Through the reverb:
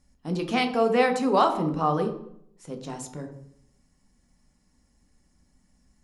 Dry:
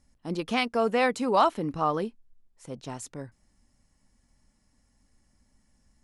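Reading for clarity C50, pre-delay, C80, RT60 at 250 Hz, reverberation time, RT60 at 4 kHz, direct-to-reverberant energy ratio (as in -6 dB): 9.5 dB, 3 ms, 12.5 dB, 0.80 s, 0.70 s, 0.50 s, 5.0 dB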